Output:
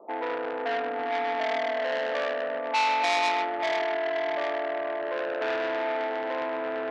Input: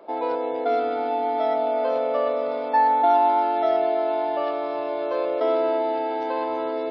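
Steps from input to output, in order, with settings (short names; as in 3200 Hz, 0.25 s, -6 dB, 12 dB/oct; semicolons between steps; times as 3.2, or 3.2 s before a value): Chebyshev band-pass 130–1200 Hz, order 5; diffused feedback echo 0.502 s, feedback 47%, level -10.5 dB; core saturation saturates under 2800 Hz; gain -2 dB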